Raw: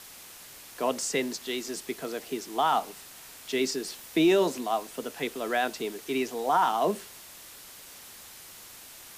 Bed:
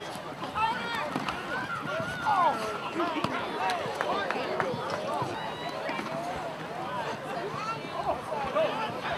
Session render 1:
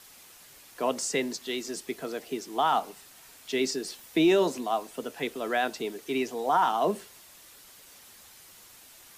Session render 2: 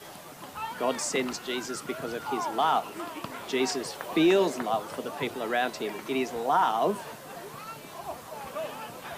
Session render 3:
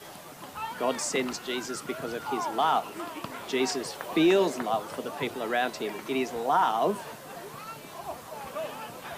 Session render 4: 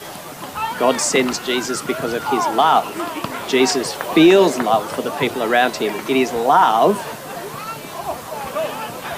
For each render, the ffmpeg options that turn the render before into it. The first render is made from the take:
-af "afftdn=nr=6:nf=-48"
-filter_complex "[1:a]volume=-8dB[a];[0:a][a]amix=inputs=2:normalize=0"
-af anull
-af "volume=12dB,alimiter=limit=-3dB:level=0:latency=1"

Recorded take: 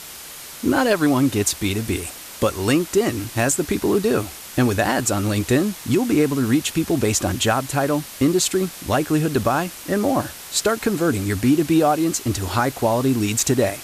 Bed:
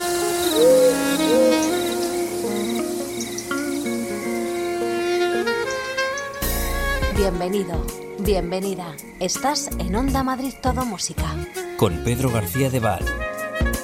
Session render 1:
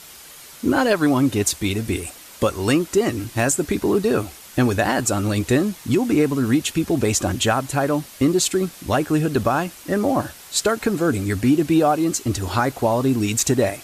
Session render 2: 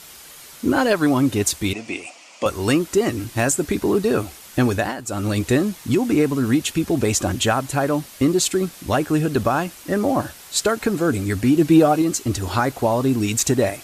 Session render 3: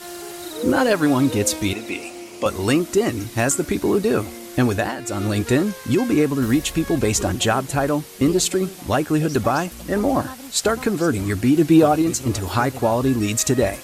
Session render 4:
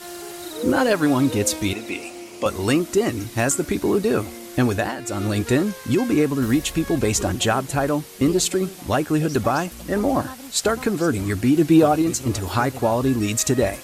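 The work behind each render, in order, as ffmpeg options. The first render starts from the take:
-af "afftdn=nr=6:nf=-37"
-filter_complex "[0:a]asettb=1/sr,asplit=3[a][b][c];[a]atrim=end=1.734[d];[b]atrim=start=1.73:end=2.46,asetpts=PTS-STARTPTS,afade=t=in:d=0.004:c=qsin,afade=t=out:st=0.726:d=0.004:c=qsin,highpass=330,equalizer=f=410:t=q:w=4:g=-8,equalizer=f=690:t=q:w=4:g=5,equalizer=f=1.6k:t=q:w=4:g=-9,equalizer=f=2.5k:t=q:w=4:g=7,equalizer=f=3.8k:t=q:w=4:g=-7,lowpass=f=6.9k:w=0.5412,lowpass=f=6.9k:w=1.3066[e];[c]atrim=start=2.456[f];[d][e]acrossfade=d=0.004:c1=hsin:c2=qsin[g];[g][f]acrossfade=d=0.004:c1=qsin:c2=hsin,asettb=1/sr,asplit=3[h][i][j];[h]atrim=end=11.564[k];[i]atrim=start=11.56:end=12.02,asetpts=PTS-STARTPTS,afade=t=in:d=0.004:c=qsin,afade=t=out:st=0.456:d=0.004:c=qsin,aecho=1:1:6.3:0.65,atrim=end_sample=20286[l];[j]atrim=start=12.016[m];[k][l]acrossfade=d=0.004:c1=hsin:c2=qsin[n];[n][m]acrossfade=d=0.004:c1=qsin:c2=hsin,asplit=3[o][p][q];[o]atrim=end=4.97,asetpts=PTS-STARTPTS,afade=t=out:st=4.66:d=0.31:c=qsin:silence=0.266073[r];[p]atrim=start=4.97:end=5.05,asetpts=PTS-STARTPTS,volume=-11.5dB[s];[q]atrim=start=5.05,asetpts=PTS-STARTPTS,afade=t=in:d=0.31:c=qsin:silence=0.266073[t];[r][s][t]concat=n=3:v=0:a=1"
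-filter_complex "[1:a]volume=-13dB[a];[0:a][a]amix=inputs=2:normalize=0"
-af "volume=-1dB"

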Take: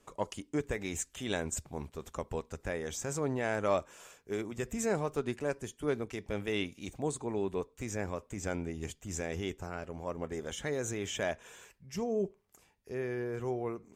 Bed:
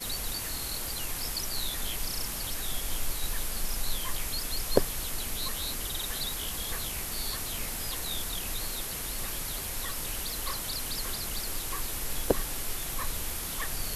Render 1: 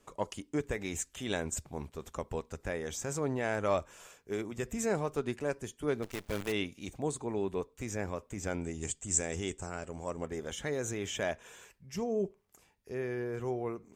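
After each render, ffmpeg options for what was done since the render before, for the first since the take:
-filter_complex "[0:a]asettb=1/sr,asplit=3[a][b][c];[a]atrim=end=3.464[d];[b]atrim=start=3.46:end=4.06,asetpts=PTS-STARTPTS,afade=t=in:d=0.004:c=qsin,afade=t=out:st=0.596:d=0.004:c=qsin,asubboost=boost=9.5:cutoff=150[e];[c]atrim=start=4.056[f];[d][e]acrossfade=d=0.004:c1=hsin:c2=qsin[g];[g][f]acrossfade=d=0.004:c1=qsin:c2=hsin,asplit=3[h][i][j];[h]afade=t=out:st=6.02:d=0.02[k];[i]acrusher=bits=7:dc=4:mix=0:aa=0.000001,afade=t=in:st=6.02:d=0.02,afade=t=out:st=6.51:d=0.02[l];[j]afade=t=in:st=6.51:d=0.02[m];[k][l][m]amix=inputs=3:normalize=0,asettb=1/sr,asplit=3[n][o][p];[n]atrim=end=8.614[q];[o]atrim=start=8.61:end=10.26,asetpts=PTS-STARTPTS,afade=t=in:d=0.004:c=qsin,afade=t=out:st=1.646:d=0.004:c=qsin,lowpass=f=8k:t=q:w=7.4[r];[p]atrim=start=10.256[s];[q][r]acrossfade=d=0.004:c1=hsin:c2=qsin[t];[t][s]acrossfade=d=0.004:c1=qsin:c2=hsin"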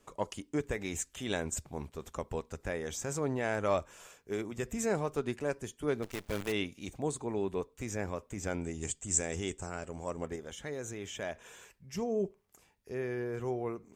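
-filter_complex "[0:a]asplit=3[a][b][c];[a]atrim=end=10.362[d];[b]atrim=start=10.358:end=11.352,asetpts=PTS-STARTPTS,volume=-5dB[e];[c]atrim=start=11.348[f];[d][e]acrossfade=d=0.004:c1=hsin:c2=hsin[g];[g][f]acrossfade=d=0.004:c1=hsin:c2=hsin"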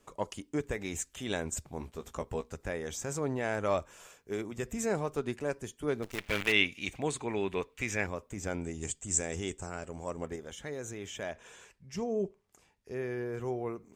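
-filter_complex "[0:a]asettb=1/sr,asplit=3[a][b][c];[a]atrim=end=1.784[d];[b]atrim=start=1.78:end=2.55,asetpts=PTS-STARTPTS,afade=t=in:d=0.004:c=qsin,afade=t=out:st=0.766:d=0.004:c=qsin,asplit=2[e][f];[f]adelay=17,volume=-7dB[g];[e][g]amix=inputs=2:normalize=0,atrim=end_sample=33957[h];[c]atrim=start=2.546[i];[d][h]acrossfade=d=0.004:c1=hsin:c2=qsin[j];[j][i]acrossfade=d=0.004:c1=qsin:c2=hsin,asettb=1/sr,asplit=3[k][l][m];[k]atrim=end=6.184[n];[l]atrim=start=6.18:end=8.07,asetpts=PTS-STARTPTS,afade=t=in:d=0.004:c=qsin,afade=t=out:st=1.886:d=0.004:c=qsin,equalizer=f=2.4k:w=0.88:g=14[o];[m]atrim=start=8.066[p];[n][o]acrossfade=d=0.004:c1=hsin:c2=qsin[q];[q][p]acrossfade=d=0.004:c1=qsin:c2=hsin,asettb=1/sr,asplit=3[r][s][t];[r]atrim=end=11.304[u];[s]atrim=start=11.3:end=12.91,asetpts=PTS-STARTPTS,afade=t=in:d=0.004:c=qsin,afade=t=out:st=1.606:d=0.004:c=qsin,lowpass=9.2k[v];[t]atrim=start=12.906[w];[u][v]acrossfade=d=0.004:c1=hsin:c2=qsin[x];[x][w]acrossfade=d=0.004:c1=qsin:c2=hsin"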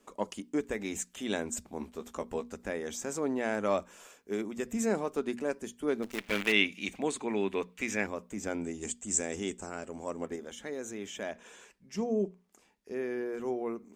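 -af "lowshelf=f=170:t=q:w=3:g=-7,bandreject=f=60:t=h:w=6,bandreject=f=120:t=h:w=6,bandreject=f=180:t=h:w=6,bandreject=f=240:t=h:w=6"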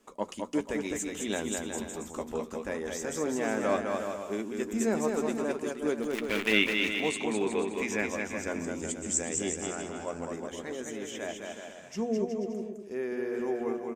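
-filter_complex "[0:a]asplit=2[a][b];[b]adelay=13,volume=-12dB[c];[a][c]amix=inputs=2:normalize=0,asplit=2[d][e];[e]aecho=0:1:210|367.5|485.6|574.2|640.7:0.631|0.398|0.251|0.158|0.1[f];[d][f]amix=inputs=2:normalize=0"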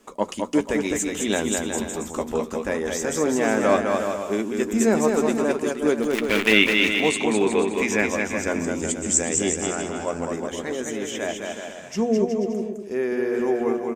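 -af "volume=9dB,alimiter=limit=-2dB:level=0:latency=1"

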